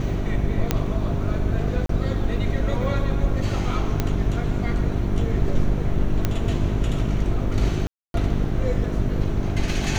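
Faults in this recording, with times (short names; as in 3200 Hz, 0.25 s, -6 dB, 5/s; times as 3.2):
hum 50 Hz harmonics 8 -26 dBFS
0.71 pop -5 dBFS
1.86–1.89 gap 33 ms
4 pop -8 dBFS
6.25 pop -8 dBFS
7.87–8.14 gap 0.272 s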